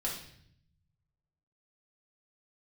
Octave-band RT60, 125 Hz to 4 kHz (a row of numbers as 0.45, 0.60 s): 1.8, 1.2, 0.70, 0.60, 0.65, 0.65 s